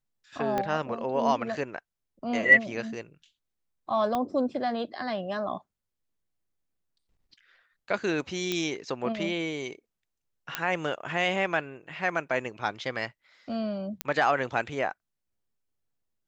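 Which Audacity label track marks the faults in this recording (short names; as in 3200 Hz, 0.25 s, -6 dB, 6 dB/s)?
0.580000	0.580000	pop -15 dBFS
4.150000	4.150000	pop -16 dBFS
8.520000	8.520000	pop -14 dBFS
10.550000	10.550000	pop -11 dBFS
14.010000	14.010000	pop -11 dBFS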